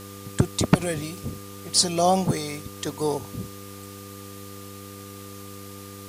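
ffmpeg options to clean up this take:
-af "adeclick=t=4,bandreject=f=99:t=h:w=4,bandreject=f=198:t=h:w=4,bandreject=f=297:t=h:w=4,bandreject=f=396:t=h:w=4,bandreject=f=495:t=h:w=4,bandreject=f=1200:w=30,afwtdn=0.0056"

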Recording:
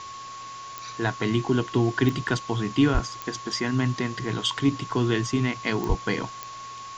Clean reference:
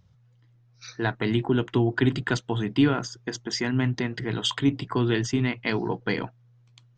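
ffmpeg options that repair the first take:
-filter_complex "[0:a]adeclick=t=4,bandreject=f=1100:w=30,asplit=3[s0][s1][s2];[s0]afade=t=out:st=2.93:d=0.02[s3];[s1]highpass=f=140:w=0.5412,highpass=f=140:w=1.3066,afade=t=in:st=2.93:d=0.02,afade=t=out:st=3.05:d=0.02[s4];[s2]afade=t=in:st=3.05:d=0.02[s5];[s3][s4][s5]amix=inputs=3:normalize=0,asplit=3[s6][s7][s8];[s6]afade=t=out:st=5.88:d=0.02[s9];[s7]highpass=f=140:w=0.5412,highpass=f=140:w=1.3066,afade=t=in:st=5.88:d=0.02,afade=t=out:st=6:d=0.02[s10];[s8]afade=t=in:st=6:d=0.02[s11];[s9][s10][s11]amix=inputs=3:normalize=0,afftdn=nr=20:nf=-39"

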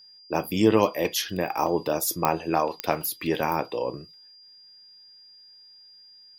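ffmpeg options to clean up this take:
-af "adeclick=t=4,bandreject=f=4800:w=30"

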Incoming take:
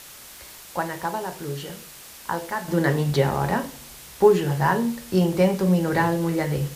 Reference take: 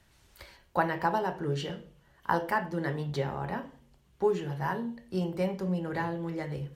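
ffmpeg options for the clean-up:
-af "afwtdn=0.0079,asetnsamples=n=441:p=0,asendcmd='2.68 volume volume -11dB',volume=1"

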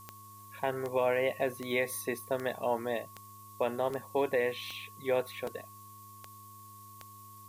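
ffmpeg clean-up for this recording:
-af "adeclick=t=4,bandreject=f=102.8:t=h:w=4,bandreject=f=205.6:t=h:w=4,bandreject=f=308.4:t=h:w=4,bandreject=f=411.2:t=h:w=4,bandreject=f=1100:w=30,afftdn=nr=26:nf=-51"

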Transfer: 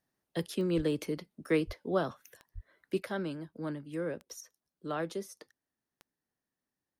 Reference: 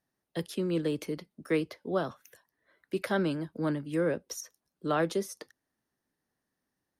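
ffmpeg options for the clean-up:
-filter_complex "[0:a]adeclick=t=4,asplit=3[s0][s1][s2];[s0]afade=t=out:st=0.76:d=0.02[s3];[s1]highpass=f=140:w=0.5412,highpass=f=140:w=1.3066,afade=t=in:st=0.76:d=0.02,afade=t=out:st=0.88:d=0.02[s4];[s2]afade=t=in:st=0.88:d=0.02[s5];[s3][s4][s5]amix=inputs=3:normalize=0,asplit=3[s6][s7][s8];[s6]afade=t=out:st=1.66:d=0.02[s9];[s7]highpass=f=140:w=0.5412,highpass=f=140:w=1.3066,afade=t=in:st=1.66:d=0.02,afade=t=out:st=1.78:d=0.02[s10];[s8]afade=t=in:st=1.78:d=0.02[s11];[s9][s10][s11]amix=inputs=3:normalize=0,asplit=3[s12][s13][s14];[s12]afade=t=out:st=2.54:d=0.02[s15];[s13]highpass=f=140:w=0.5412,highpass=f=140:w=1.3066,afade=t=in:st=2.54:d=0.02,afade=t=out:st=2.66:d=0.02[s16];[s14]afade=t=in:st=2.66:d=0.02[s17];[s15][s16][s17]amix=inputs=3:normalize=0,asetnsamples=n=441:p=0,asendcmd='3 volume volume 7dB',volume=1"

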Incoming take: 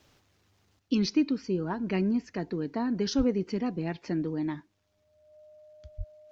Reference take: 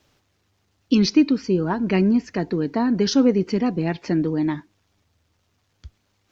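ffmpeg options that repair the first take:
-filter_complex "[0:a]bandreject=f=610:w=30,asplit=3[s0][s1][s2];[s0]afade=t=out:st=3.17:d=0.02[s3];[s1]highpass=f=140:w=0.5412,highpass=f=140:w=1.3066,afade=t=in:st=3.17:d=0.02,afade=t=out:st=3.29:d=0.02[s4];[s2]afade=t=in:st=3.29:d=0.02[s5];[s3][s4][s5]amix=inputs=3:normalize=0,asplit=3[s6][s7][s8];[s6]afade=t=out:st=5.97:d=0.02[s9];[s7]highpass=f=140:w=0.5412,highpass=f=140:w=1.3066,afade=t=in:st=5.97:d=0.02,afade=t=out:st=6.09:d=0.02[s10];[s8]afade=t=in:st=6.09:d=0.02[s11];[s9][s10][s11]amix=inputs=3:normalize=0,asetnsamples=n=441:p=0,asendcmd='0.79 volume volume 9dB',volume=1"

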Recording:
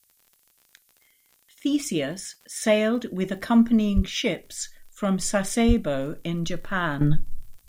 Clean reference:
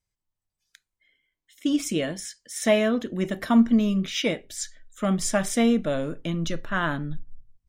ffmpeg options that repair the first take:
-filter_complex "[0:a]adeclick=t=4,asplit=3[s0][s1][s2];[s0]afade=t=out:st=3.95:d=0.02[s3];[s1]highpass=f=140:w=0.5412,highpass=f=140:w=1.3066,afade=t=in:st=3.95:d=0.02,afade=t=out:st=4.07:d=0.02[s4];[s2]afade=t=in:st=4.07:d=0.02[s5];[s3][s4][s5]amix=inputs=3:normalize=0,asplit=3[s6][s7][s8];[s6]afade=t=out:st=5.67:d=0.02[s9];[s7]highpass=f=140:w=0.5412,highpass=f=140:w=1.3066,afade=t=in:st=5.67:d=0.02,afade=t=out:st=5.79:d=0.02[s10];[s8]afade=t=in:st=5.79:d=0.02[s11];[s9][s10][s11]amix=inputs=3:normalize=0,agate=range=0.0891:threshold=0.00158,asetnsamples=n=441:p=0,asendcmd='7.01 volume volume -12dB',volume=1"

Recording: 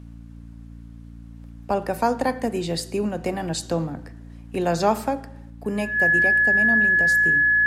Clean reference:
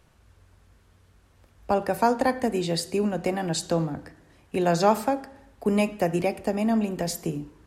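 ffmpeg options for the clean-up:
-af "bandreject=f=57.2:t=h:w=4,bandreject=f=114.4:t=h:w=4,bandreject=f=171.6:t=h:w=4,bandreject=f=228.8:t=h:w=4,bandreject=f=286:t=h:w=4,bandreject=f=1700:w=30,asetnsamples=n=441:p=0,asendcmd='5.5 volume volume 3.5dB',volume=1"

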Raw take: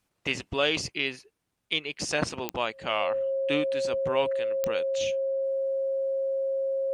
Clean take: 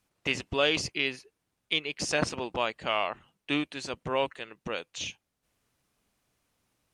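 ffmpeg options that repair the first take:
-af "adeclick=t=4,bandreject=f=540:w=30"

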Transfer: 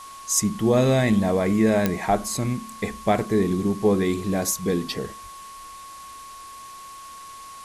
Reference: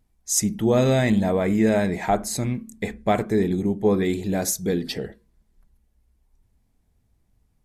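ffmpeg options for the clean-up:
-filter_complex "[0:a]adeclick=t=4,bandreject=f=1100:w=30,asplit=3[s0][s1][s2];[s0]afade=t=out:st=5.22:d=0.02[s3];[s1]highpass=f=140:w=0.5412,highpass=f=140:w=1.3066,afade=t=in:st=5.22:d=0.02,afade=t=out:st=5.34:d=0.02[s4];[s2]afade=t=in:st=5.34:d=0.02[s5];[s3][s4][s5]amix=inputs=3:normalize=0,afwtdn=0.0056"

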